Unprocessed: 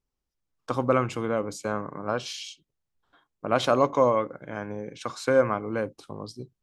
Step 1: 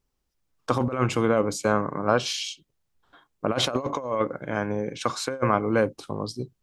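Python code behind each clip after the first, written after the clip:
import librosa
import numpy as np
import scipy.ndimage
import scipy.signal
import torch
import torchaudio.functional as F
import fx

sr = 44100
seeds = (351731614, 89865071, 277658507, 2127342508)

y = fx.over_compress(x, sr, threshold_db=-26.0, ratio=-0.5)
y = y * librosa.db_to_amplitude(4.0)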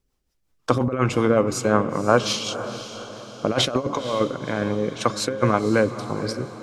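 y = fx.rotary(x, sr, hz=5.5)
y = fx.echo_diffused(y, sr, ms=505, feedback_pct=48, wet_db=-12)
y = y * librosa.db_to_amplitude(5.5)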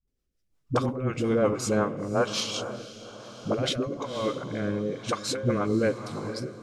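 y = fx.dispersion(x, sr, late='highs', ms=76.0, hz=300.0)
y = fx.rotary(y, sr, hz=1.1)
y = y * librosa.db_to_amplitude(-3.5)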